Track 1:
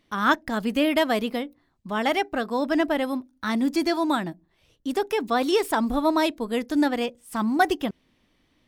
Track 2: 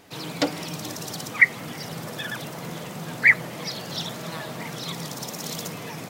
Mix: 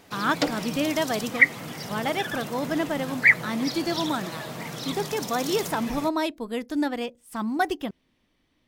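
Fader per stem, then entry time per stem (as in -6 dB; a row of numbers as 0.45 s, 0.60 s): -4.0 dB, -1.0 dB; 0.00 s, 0.00 s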